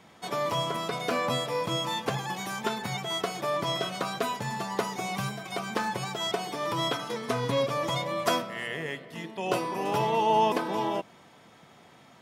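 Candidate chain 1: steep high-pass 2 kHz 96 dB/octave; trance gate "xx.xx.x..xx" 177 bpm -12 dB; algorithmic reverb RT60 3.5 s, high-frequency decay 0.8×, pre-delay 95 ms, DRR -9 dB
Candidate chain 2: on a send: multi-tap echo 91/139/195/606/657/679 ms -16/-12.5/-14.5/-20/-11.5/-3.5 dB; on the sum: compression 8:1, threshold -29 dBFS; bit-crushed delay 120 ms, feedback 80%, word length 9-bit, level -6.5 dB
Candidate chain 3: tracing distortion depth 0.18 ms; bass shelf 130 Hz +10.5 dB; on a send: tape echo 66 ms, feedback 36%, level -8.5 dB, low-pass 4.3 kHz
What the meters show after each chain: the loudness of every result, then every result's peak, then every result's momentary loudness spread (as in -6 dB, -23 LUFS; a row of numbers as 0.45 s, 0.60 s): -30.5 LUFS, -31.5 LUFS, -28.5 LUFS; -17.0 dBFS, -17.0 dBFS, -9.5 dBFS; 7 LU, 2 LU, 7 LU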